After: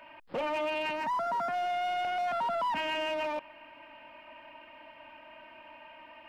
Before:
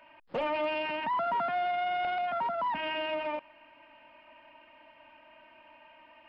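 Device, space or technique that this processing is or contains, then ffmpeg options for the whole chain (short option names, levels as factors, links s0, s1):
limiter into clipper: -filter_complex "[0:a]alimiter=level_in=2:limit=0.0631:level=0:latency=1:release=10,volume=0.501,asoftclip=type=hard:threshold=0.0237,asettb=1/sr,asplit=3[s0][s1][s2];[s0]atrim=end=0.934[s3];[s1]atrim=start=0.93:end=1.54,asetpts=PTS-STARTPTS,afade=t=in:d=0.004:c=qsin,afade=t=out:st=0.606:d=0.004:c=qsin,equalizer=f=3100:w=2:g=-8.5[s4];[s2]atrim=start=1.536[s5];[s3][s4]acrossfade=d=0.004:c1=hsin:c2=qsin[s6];[s6][s5]acrossfade=d=0.004:c1=qsin:c2=hsin,volume=1.78"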